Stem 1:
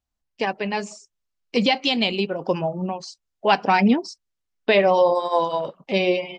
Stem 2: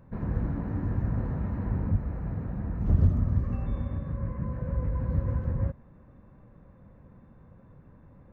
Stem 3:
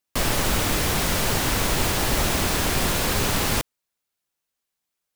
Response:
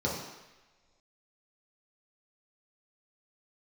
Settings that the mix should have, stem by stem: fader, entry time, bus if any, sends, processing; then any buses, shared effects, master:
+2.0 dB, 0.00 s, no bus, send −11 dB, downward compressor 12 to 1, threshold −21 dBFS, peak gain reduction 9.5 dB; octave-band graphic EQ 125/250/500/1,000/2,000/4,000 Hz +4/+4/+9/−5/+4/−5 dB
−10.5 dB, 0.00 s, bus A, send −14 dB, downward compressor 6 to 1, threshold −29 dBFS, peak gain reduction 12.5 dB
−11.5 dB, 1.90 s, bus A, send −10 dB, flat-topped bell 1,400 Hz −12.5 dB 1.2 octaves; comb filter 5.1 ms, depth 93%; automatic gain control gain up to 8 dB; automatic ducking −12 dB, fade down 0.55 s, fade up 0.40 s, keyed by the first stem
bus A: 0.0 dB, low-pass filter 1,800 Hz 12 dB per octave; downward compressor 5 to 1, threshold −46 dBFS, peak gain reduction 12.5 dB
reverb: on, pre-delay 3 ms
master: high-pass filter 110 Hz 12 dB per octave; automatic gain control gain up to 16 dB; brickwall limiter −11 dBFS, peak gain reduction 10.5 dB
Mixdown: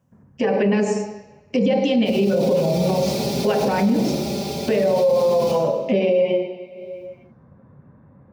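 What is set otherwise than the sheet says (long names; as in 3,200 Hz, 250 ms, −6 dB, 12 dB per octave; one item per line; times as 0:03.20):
stem 1 +2.0 dB → +9.5 dB
stem 2: send −14 dB → −23.5 dB
stem 3: send −10 dB → −2.5 dB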